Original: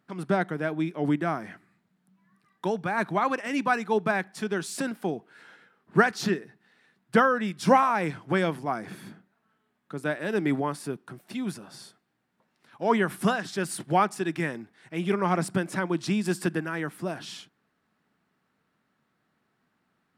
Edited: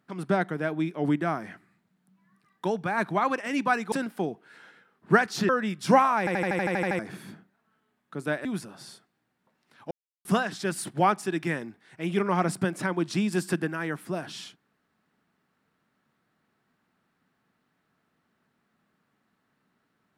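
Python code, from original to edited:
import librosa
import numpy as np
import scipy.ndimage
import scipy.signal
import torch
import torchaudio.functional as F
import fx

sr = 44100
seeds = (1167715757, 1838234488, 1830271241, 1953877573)

y = fx.edit(x, sr, fx.cut(start_s=3.92, length_s=0.85),
    fx.cut(start_s=6.34, length_s=0.93),
    fx.stutter_over(start_s=7.97, slice_s=0.08, count=10),
    fx.cut(start_s=10.23, length_s=1.15),
    fx.silence(start_s=12.84, length_s=0.34), tone=tone)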